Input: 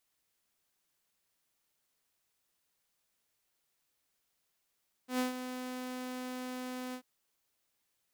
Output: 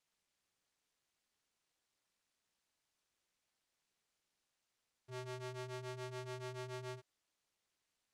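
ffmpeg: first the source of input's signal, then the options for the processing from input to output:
-f lavfi -i "aevalsrc='0.0501*(2*mod(253*t,1)-1)':d=1.939:s=44100,afade=t=in:d=0.113,afade=t=out:st=0.113:d=0.13:silence=0.316,afade=t=out:st=1.86:d=0.079"
-af "lowpass=8k,alimiter=level_in=13dB:limit=-24dB:level=0:latency=1,volume=-13dB,aeval=exprs='val(0)*sin(2*PI*130*n/s)':c=same"

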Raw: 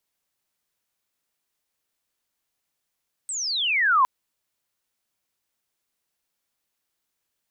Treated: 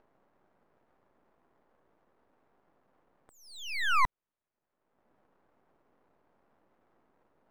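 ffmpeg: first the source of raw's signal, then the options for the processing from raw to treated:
-f lavfi -i "aevalsrc='pow(10,(-27.5+13.5*t/0.76)/20)*sin(2*PI*8400*0.76/log(980/8400)*(exp(log(980/8400)*t/0.76)-1))':d=0.76:s=44100"
-filter_complex "[0:a]lowpass=1.4k,acrossover=split=150|1100[a][b][c];[b]acompressor=mode=upward:threshold=-45dB:ratio=2.5[d];[a][d][c]amix=inputs=3:normalize=0,aeval=exprs='max(val(0),0)':c=same"

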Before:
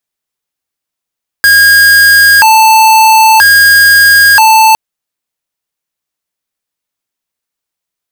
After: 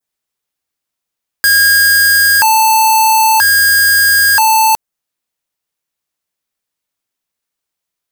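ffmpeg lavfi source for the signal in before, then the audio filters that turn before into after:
-f lavfi -i "aevalsrc='0.631*(2*lt(mod((1256*t+374/0.51*(0.5-abs(mod(0.51*t,1)-0.5))),1),0.5)-1)':d=3.31:s=44100"
-filter_complex "[0:a]adynamicequalizer=threshold=0.0794:dfrequency=3100:dqfactor=0.81:tfrequency=3100:tqfactor=0.81:attack=5:release=100:ratio=0.375:range=2:mode=cutabove:tftype=bell,acrossover=split=5100[a][b];[a]alimiter=limit=-8.5dB:level=0:latency=1:release=73[c];[c][b]amix=inputs=2:normalize=0"

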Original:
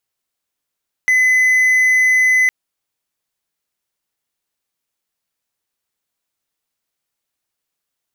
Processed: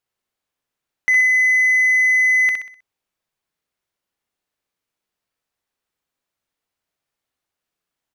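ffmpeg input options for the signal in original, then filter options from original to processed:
-f lavfi -i "aevalsrc='0.398*(1-4*abs(mod(2020*t+0.25,1)-0.5))':d=1.41:s=44100"
-filter_complex "[0:a]highshelf=f=4.2k:g=-9.5,asplit=2[a][b];[b]aecho=0:1:63|126|189|252|315:0.596|0.232|0.0906|0.0353|0.0138[c];[a][c]amix=inputs=2:normalize=0"

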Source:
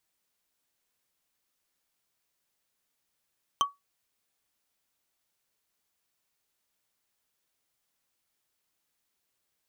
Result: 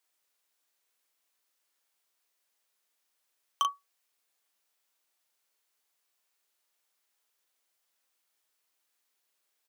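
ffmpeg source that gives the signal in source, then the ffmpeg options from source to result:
-f lavfi -i "aevalsrc='0.133*pow(10,-3*t/0.18)*sin(2*PI*1130*t)+0.0841*pow(10,-3*t/0.053)*sin(2*PI*3115.4*t)+0.0531*pow(10,-3*t/0.024)*sin(2*PI*6106.5*t)+0.0335*pow(10,-3*t/0.013)*sin(2*PI*10094.3*t)+0.0211*pow(10,-3*t/0.008)*sin(2*PI*15074.2*t)':d=0.45:s=44100"
-filter_complex "[0:a]highpass=360,acrossover=split=650[a][b];[a]aeval=exprs='(mod(178*val(0)+1,2)-1)/178':c=same[c];[b]asplit=2[d][e];[e]adelay=38,volume=-5dB[f];[d][f]amix=inputs=2:normalize=0[g];[c][g]amix=inputs=2:normalize=0"

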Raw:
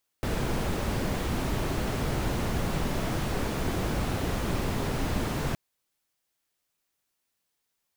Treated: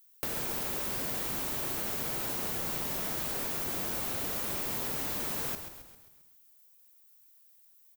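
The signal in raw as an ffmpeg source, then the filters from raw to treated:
-f lavfi -i "anoisesrc=c=brown:a=0.186:d=5.32:r=44100:seed=1"
-filter_complex "[0:a]aemphasis=mode=production:type=bsi,acompressor=threshold=-32dB:ratio=6,asplit=2[a][b];[b]asplit=6[c][d][e][f][g][h];[c]adelay=133,afreqshift=-60,volume=-9dB[i];[d]adelay=266,afreqshift=-120,volume=-14.8dB[j];[e]adelay=399,afreqshift=-180,volume=-20.7dB[k];[f]adelay=532,afreqshift=-240,volume=-26.5dB[l];[g]adelay=665,afreqshift=-300,volume=-32.4dB[m];[h]adelay=798,afreqshift=-360,volume=-38.2dB[n];[i][j][k][l][m][n]amix=inputs=6:normalize=0[o];[a][o]amix=inputs=2:normalize=0"

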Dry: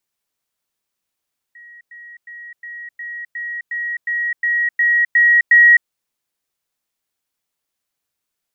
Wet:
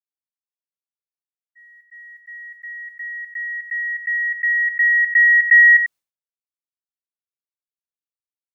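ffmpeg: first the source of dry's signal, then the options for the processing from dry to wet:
-f lavfi -i "aevalsrc='pow(10,(-38.5+3*floor(t/0.36))/20)*sin(2*PI*1900*t)*clip(min(mod(t,0.36),0.26-mod(t,0.36))/0.005,0,1)':d=4.32:s=44100"
-filter_complex "[0:a]agate=range=-33dB:threshold=-37dB:ratio=3:detection=peak,asplit=2[a][b];[b]aecho=0:1:93:0.316[c];[a][c]amix=inputs=2:normalize=0"

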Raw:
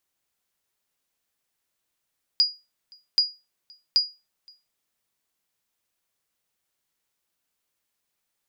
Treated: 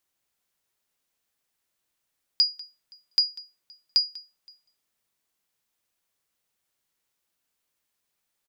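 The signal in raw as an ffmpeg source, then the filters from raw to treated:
-f lavfi -i "aevalsrc='0.266*(sin(2*PI*4880*mod(t,0.78))*exp(-6.91*mod(t,0.78)/0.26)+0.0316*sin(2*PI*4880*max(mod(t,0.78)-0.52,0))*exp(-6.91*max(mod(t,0.78)-0.52,0)/0.26))':d=2.34:s=44100"
-af "aecho=1:1:194:0.1"

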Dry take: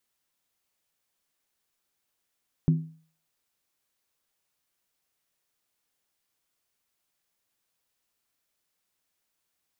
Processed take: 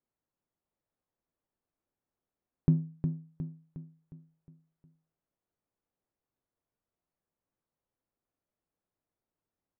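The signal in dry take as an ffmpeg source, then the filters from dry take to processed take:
-f lavfi -i "aevalsrc='0.178*pow(10,-3*t/0.44)*sin(2*PI*160*t)+0.0562*pow(10,-3*t/0.349)*sin(2*PI*255*t)+0.0178*pow(10,-3*t/0.301)*sin(2*PI*341.8*t)+0.00562*pow(10,-3*t/0.29)*sin(2*PI*367.4*t)+0.00178*pow(10,-3*t/0.27)*sin(2*PI*424.5*t)':d=0.63:s=44100"
-filter_complex "[0:a]adynamicsmooth=sensitivity=3.5:basefreq=890,asplit=2[a][b];[b]aecho=0:1:360|720|1080|1440|1800|2160:0.447|0.214|0.103|0.0494|0.0237|0.0114[c];[a][c]amix=inputs=2:normalize=0"

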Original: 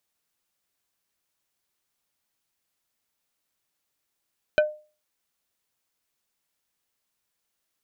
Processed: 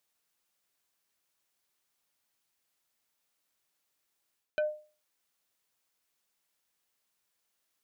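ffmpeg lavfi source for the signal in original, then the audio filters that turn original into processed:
-f lavfi -i "aevalsrc='0.224*pow(10,-3*t/0.35)*sin(2*PI*607*t)+0.126*pow(10,-3*t/0.117)*sin(2*PI*1517.5*t)+0.0708*pow(10,-3*t/0.066)*sin(2*PI*2428*t)+0.0398*pow(10,-3*t/0.051)*sin(2*PI*3035*t)+0.0224*pow(10,-3*t/0.037)*sin(2*PI*3945.5*t)':d=0.45:s=44100"
-af "lowshelf=f=230:g=-5.5,areverse,acompressor=threshold=-30dB:ratio=5,areverse"

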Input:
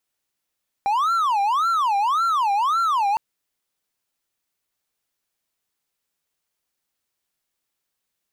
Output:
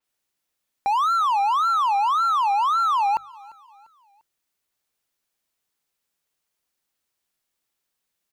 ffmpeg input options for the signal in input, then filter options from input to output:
-f lavfi -i "aevalsrc='0.168*(1-4*abs(mod((1082*t-288/(2*PI*1.8)*sin(2*PI*1.8*t))+0.25,1)-0.5))':d=2.31:s=44100"
-af "bandreject=f=50:t=h:w=6,bandreject=f=100:t=h:w=6,bandreject=f=150:t=h:w=6,aecho=1:1:347|694|1041:0.0708|0.0297|0.0125,adynamicequalizer=threshold=0.00631:dfrequency=5200:dqfactor=0.7:tfrequency=5200:tqfactor=0.7:attack=5:release=100:ratio=0.375:range=2.5:mode=cutabove:tftype=highshelf"

